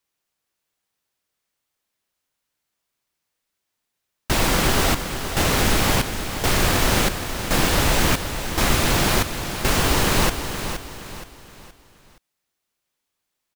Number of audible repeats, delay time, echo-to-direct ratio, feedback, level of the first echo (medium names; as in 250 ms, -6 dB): 4, 471 ms, -8.5 dB, 38%, -9.0 dB